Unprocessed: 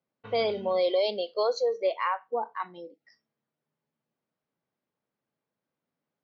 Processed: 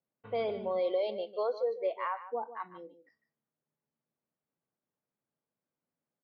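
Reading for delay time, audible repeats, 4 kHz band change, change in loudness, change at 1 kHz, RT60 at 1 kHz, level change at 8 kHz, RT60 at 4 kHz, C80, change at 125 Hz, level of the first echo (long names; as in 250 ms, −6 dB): 150 ms, 1, −13.5 dB, −5.5 dB, −6.0 dB, no reverb audible, can't be measured, no reverb audible, no reverb audible, can't be measured, −13.5 dB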